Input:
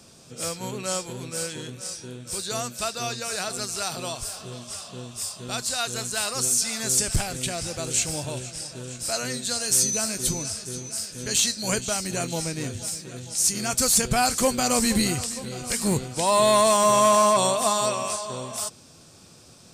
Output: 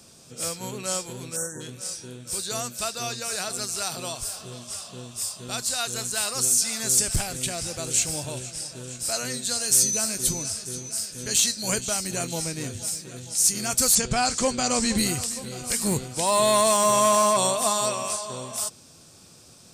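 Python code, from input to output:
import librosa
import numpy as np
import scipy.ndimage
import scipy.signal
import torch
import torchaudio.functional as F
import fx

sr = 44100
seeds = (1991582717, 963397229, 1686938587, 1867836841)

y = fx.spec_erase(x, sr, start_s=1.36, length_s=0.25, low_hz=1900.0, high_hz=5500.0)
y = fx.lowpass(y, sr, hz=7800.0, slope=24, at=(13.95, 14.98))
y = fx.high_shelf(y, sr, hz=6400.0, db=6.0)
y = y * 10.0 ** (-2.0 / 20.0)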